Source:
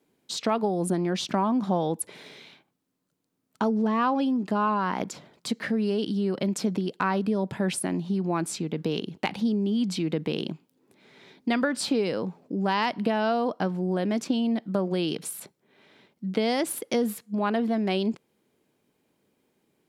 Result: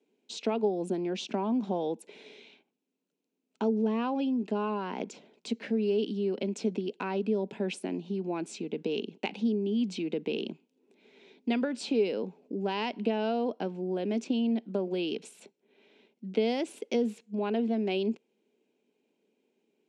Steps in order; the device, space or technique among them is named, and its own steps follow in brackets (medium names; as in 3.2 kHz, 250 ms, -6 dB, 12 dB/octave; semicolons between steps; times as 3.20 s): television speaker (cabinet simulation 200–7300 Hz, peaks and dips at 230 Hz +5 dB, 420 Hz +8 dB, 1.2 kHz -10 dB, 1.8 kHz -6 dB, 2.6 kHz +7 dB, 4.8 kHz -4 dB); trim -6.5 dB